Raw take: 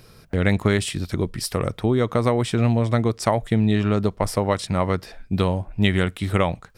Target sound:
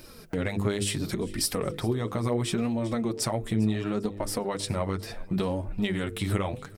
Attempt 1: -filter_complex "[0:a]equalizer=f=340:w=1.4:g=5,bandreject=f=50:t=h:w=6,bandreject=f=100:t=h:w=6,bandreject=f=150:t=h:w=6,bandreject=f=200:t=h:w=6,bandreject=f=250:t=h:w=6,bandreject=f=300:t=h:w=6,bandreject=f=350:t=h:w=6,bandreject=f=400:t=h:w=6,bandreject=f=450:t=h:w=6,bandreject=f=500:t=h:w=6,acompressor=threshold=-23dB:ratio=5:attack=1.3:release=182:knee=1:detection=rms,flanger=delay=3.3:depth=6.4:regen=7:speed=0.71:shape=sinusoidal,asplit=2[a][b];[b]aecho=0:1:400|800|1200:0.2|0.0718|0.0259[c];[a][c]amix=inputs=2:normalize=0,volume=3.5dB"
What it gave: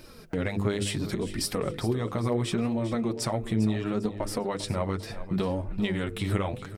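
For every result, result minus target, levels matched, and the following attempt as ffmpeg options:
echo-to-direct +7.5 dB; 8000 Hz band -3.5 dB
-filter_complex "[0:a]equalizer=f=340:w=1.4:g=5,bandreject=f=50:t=h:w=6,bandreject=f=100:t=h:w=6,bandreject=f=150:t=h:w=6,bandreject=f=200:t=h:w=6,bandreject=f=250:t=h:w=6,bandreject=f=300:t=h:w=6,bandreject=f=350:t=h:w=6,bandreject=f=400:t=h:w=6,bandreject=f=450:t=h:w=6,bandreject=f=500:t=h:w=6,acompressor=threshold=-23dB:ratio=5:attack=1.3:release=182:knee=1:detection=rms,flanger=delay=3.3:depth=6.4:regen=7:speed=0.71:shape=sinusoidal,asplit=2[a][b];[b]aecho=0:1:400|800|1200:0.0841|0.0303|0.0109[c];[a][c]amix=inputs=2:normalize=0,volume=3.5dB"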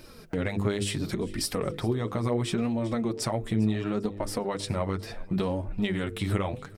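8000 Hz band -3.5 dB
-filter_complex "[0:a]equalizer=f=340:w=1.4:g=5,bandreject=f=50:t=h:w=6,bandreject=f=100:t=h:w=6,bandreject=f=150:t=h:w=6,bandreject=f=200:t=h:w=6,bandreject=f=250:t=h:w=6,bandreject=f=300:t=h:w=6,bandreject=f=350:t=h:w=6,bandreject=f=400:t=h:w=6,bandreject=f=450:t=h:w=6,bandreject=f=500:t=h:w=6,acompressor=threshold=-23dB:ratio=5:attack=1.3:release=182:knee=1:detection=rms,highshelf=f=7.1k:g=7,flanger=delay=3.3:depth=6.4:regen=7:speed=0.71:shape=sinusoidal,asplit=2[a][b];[b]aecho=0:1:400|800|1200:0.0841|0.0303|0.0109[c];[a][c]amix=inputs=2:normalize=0,volume=3.5dB"

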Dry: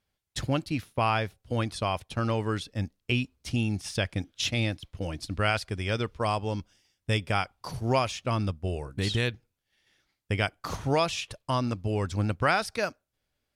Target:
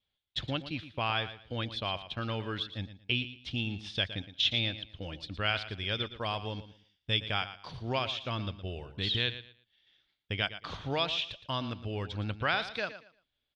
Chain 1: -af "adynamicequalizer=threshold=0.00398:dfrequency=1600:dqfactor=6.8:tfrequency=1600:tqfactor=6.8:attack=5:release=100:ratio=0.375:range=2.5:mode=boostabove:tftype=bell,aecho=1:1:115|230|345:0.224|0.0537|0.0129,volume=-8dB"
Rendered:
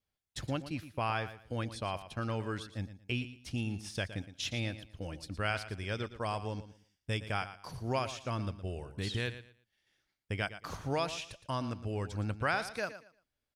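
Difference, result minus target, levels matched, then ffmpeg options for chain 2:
4000 Hz band -7.5 dB
-af "adynamicequalizer=threshold=0.00398:dfrequency=1600:dqfactor=6.8:tfrequency=1600:tqfactor=6.8:attack=5:release=100:ratio=0.375:range=2.5:mode=boostabove:tftype=bell,lowpass=f=3.5k:t=q:w=5.1,aecho=1:1:115|230|345:0.224|0.0537|0.0129,volume=-8dB"

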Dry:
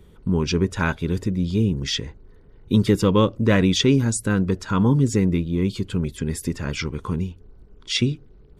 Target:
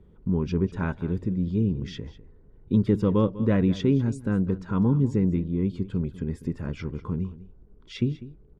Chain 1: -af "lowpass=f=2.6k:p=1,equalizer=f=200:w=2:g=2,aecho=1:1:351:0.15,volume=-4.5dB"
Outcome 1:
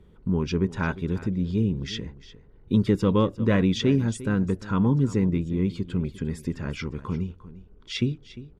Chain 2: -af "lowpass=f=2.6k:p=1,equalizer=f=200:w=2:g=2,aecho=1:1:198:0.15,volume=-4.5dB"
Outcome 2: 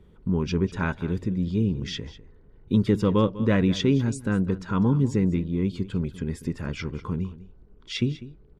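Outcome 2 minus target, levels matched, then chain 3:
2000 Hz band +6.0 dB
-af "lowpass=f=780:p=1,equalizer=f=200:w=2:g=2,aecho=1:1:198:0.15,volume=-4.5dB"

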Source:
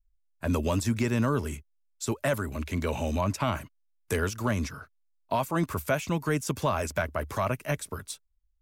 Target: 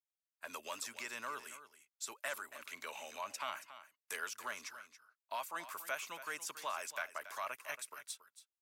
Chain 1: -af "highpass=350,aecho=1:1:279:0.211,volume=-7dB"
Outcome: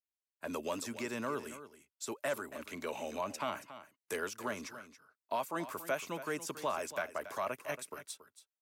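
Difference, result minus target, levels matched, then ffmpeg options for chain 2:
250 Hz band +14.0 dB
-af "highpass=1.1k,aecho=1:1:279:0.211,volume=-7dB"

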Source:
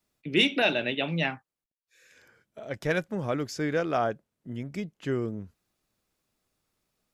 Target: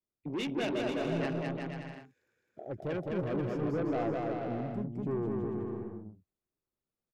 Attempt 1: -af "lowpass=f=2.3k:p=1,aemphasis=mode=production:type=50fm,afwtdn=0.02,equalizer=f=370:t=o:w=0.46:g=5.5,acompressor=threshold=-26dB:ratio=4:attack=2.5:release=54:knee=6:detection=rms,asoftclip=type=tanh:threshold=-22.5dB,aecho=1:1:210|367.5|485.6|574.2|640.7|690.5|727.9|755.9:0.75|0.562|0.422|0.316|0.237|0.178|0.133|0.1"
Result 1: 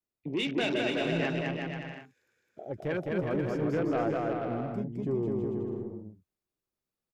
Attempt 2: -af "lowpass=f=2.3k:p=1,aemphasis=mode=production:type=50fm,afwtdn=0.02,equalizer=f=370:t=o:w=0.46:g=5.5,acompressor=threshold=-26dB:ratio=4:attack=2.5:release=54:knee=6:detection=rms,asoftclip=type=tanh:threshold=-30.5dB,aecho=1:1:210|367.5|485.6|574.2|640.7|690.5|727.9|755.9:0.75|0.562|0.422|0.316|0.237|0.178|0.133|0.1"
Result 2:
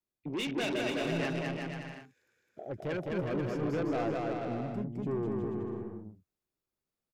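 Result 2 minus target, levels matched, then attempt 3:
2000 Hz band +3.5 dB
-af "lowpass=f=1k:p=1,aemphasis=mode=production:type=50fm,afwtdn=0.02,equalizer=f=370:t=o:w=0.46:g=5.5,acompressor=threshold=-26dB:ratio=4:attack=2.5:release=54:knee=6:detection=rms,asoftclip=type=tanh:threshold=-30.5dB,aecho=1:1:210|367.5|485.6|574.2|640.7|690.5|727.9|755.9:0.75|0.562|0.422|0.316|0.237|0.178|0.133|0.1"

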